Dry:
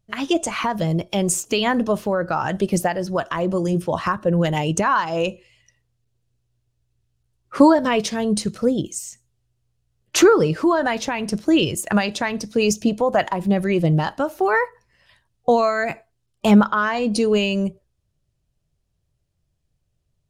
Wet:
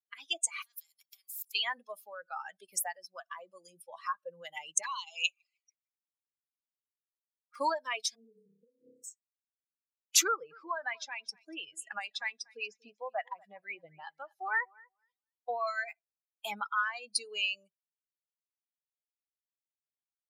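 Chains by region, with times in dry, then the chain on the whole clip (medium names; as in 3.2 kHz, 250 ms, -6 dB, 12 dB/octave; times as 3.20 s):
0.62–1.55 s: high-pass 41 Hz + level held to a coarse grid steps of 16 dB + spectrum-flattening compressor 4:1
4.83–7.56 s: frequency weighting ITU-R 468 + frequency-shifting echo 153 ms, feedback 53%, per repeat -130 Hz, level -23 dB + touch-sensitive flanger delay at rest 7.3 ms, full sweep at -19 dBFS
8.15–9.04 s: inverse Chebyshev low-pass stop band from 1 kHz + flutter echo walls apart 5.2 m, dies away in 1.2 s + compressor with a negative ratio -20 dBFS, ratio -0.5
10.27–15.67 s: low-pass that closes with the level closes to 2.2 kHz, closed at -13.5 dBFS + feedback delay 239 ms, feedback 28%, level -13.5 dB
whole clip: expander on every frequency bin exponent 2; high-pass 800 Hz 12 dB/octave; tilt EQ +3 dB/octave; trim -7.5 dB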